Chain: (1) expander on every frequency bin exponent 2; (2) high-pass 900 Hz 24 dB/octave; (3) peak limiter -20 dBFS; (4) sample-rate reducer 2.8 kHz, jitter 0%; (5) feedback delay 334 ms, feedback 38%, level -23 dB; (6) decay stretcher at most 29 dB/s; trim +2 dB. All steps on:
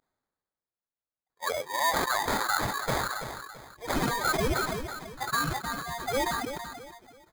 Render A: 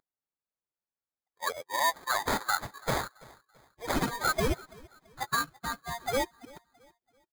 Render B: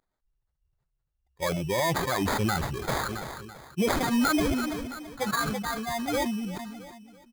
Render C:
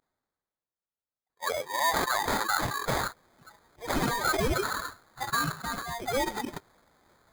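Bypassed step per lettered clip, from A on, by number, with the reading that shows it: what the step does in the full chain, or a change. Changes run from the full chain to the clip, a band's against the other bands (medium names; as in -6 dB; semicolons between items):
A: 6, momentary loudness spread change -4 LU; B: 2, 250 Hz band +9.0 dB; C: 5, momentary loudness spread change -3 LU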